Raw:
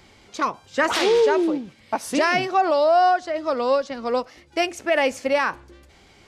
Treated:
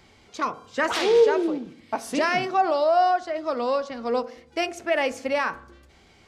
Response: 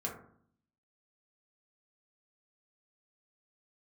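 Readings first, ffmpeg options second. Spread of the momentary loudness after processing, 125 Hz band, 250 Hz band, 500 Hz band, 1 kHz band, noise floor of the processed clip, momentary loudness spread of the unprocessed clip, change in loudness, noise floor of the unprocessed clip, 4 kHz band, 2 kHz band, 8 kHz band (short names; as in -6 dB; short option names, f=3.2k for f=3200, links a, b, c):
12 LU, -2.5 dB, -3.5 dB, -2.0 dB, -2.5 dB, -56 dBFS, 9 LU, -2.5 dB, -53 dBFS, -3.5 dB, -3.5 dB, -4.5 dB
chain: -filter_complex "[0:a]asplit=2[a][b];[1:a]atrim=start_sample=2205,lowpass=8.2k[c];[b][c]afir=irnorm=-1:irlink=0,volume=-11dB[d];[a][d]amix=inputs=2:normalize=0,volume=-5dB"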